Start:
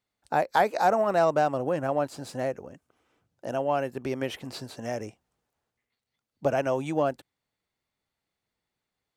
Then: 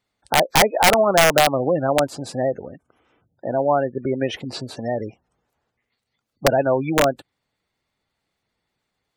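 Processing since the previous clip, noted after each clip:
gate on every frequency bin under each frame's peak −20 dB strong
wrap-around overflow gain 15 dB
level +8 dB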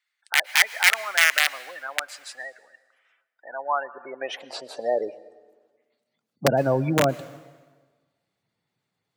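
high-pass filter sweep 1,800 Hz → 130 Hz, 0:03.10–0:06.75
dense smooth reverb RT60 1.4 s, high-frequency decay 0.85×, pre-delay 100 ms, DRR 18.5 dB
level −4 dB

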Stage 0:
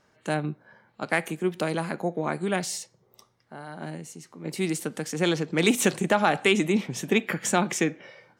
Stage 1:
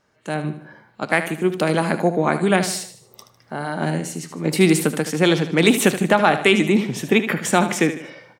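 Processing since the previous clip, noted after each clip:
dynamic equaliser 6,500 Hz, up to −6 dB, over −48 dBFS, Q 2.1
automatic gain control gain up to 14.5 dB
on a send: repeating echo 76 ms, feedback 43%, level −11 dB
on the sum: level −1 dB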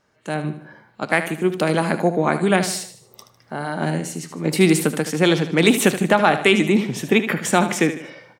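no processing that can be heard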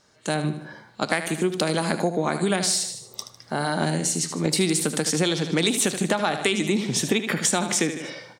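flat-topped bell 5,800 Hz +9 dB
downward compressor 6 to 1, threshold −22 dBFS, peak gain reduction 12.5 dB
level +2.5 dB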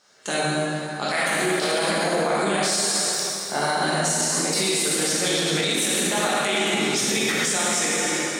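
high-pass filter 560 Hz 6 dB per octave
dense smooth reverb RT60 2.8 s, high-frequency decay 0.8×, DRR −7.5 dB
brickwall limiter −13 dBFS, peak gain reduction 8.5 dB

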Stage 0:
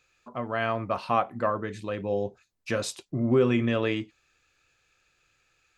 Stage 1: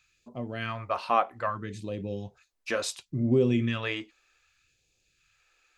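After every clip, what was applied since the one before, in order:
all-pass phaser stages 2, 0.66 Hz, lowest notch 110–1,400 Hz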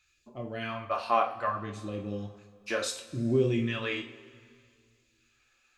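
coupled-rooms reverb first 0.35 s, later 2.3 s, from −20 dB, DRR 0.5 dB
level −3.5 dB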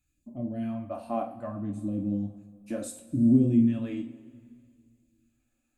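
drawn EQ curve 120 Hz 0 dB, 290 Hz +10 dB, 410 Hz −16 dB, 620 Hz −3 dB, 1,100 Hz −19 dB, 5,600 Hz −21 dB, 8,500 Hz −2 dB
level +3 dB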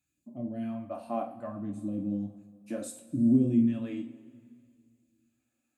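high-pass filter 120 Hz 12 dB per octave
level −2 dB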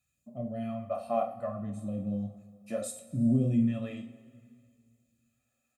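comb filter 1.6 ms, depth 88%

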